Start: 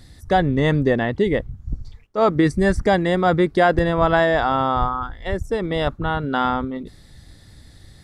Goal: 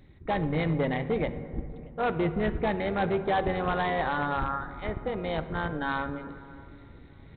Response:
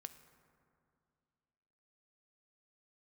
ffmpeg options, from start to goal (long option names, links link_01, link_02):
-filter_complex "[0:a]asetrate=48069,aresample=44100,areverse,acompressor=mode=upward:threshold=-34dB:ratio=2.5,areverse,tremolo=f=280:d=0.667,aresample=8000,volume=15.5dB,asoftclip=hard,volume=-15.5dB,aresample=44100,asplit=2[link_01][link_02];[link_02]adelay=628,lowpass=frequency=1200:poles=1,volume=-23.5dB,asplit=2[link_03][link_04];[link_04]adelay=628,lowpass=frequency=1200:poles=1,volume=0.47,asplit=2[link_05][link_06];[link_06]adelay=628,lowpass=frequency=1200:poles=1,volume=0.47[link_07];[link_01][link_03][link_05][link_07]amix=inputs=4:normalize=0[link_08];[1:a]atrim=start_sample=2205[link_09];[link_08][link_09]afir=irnorm=-1:irlink=0"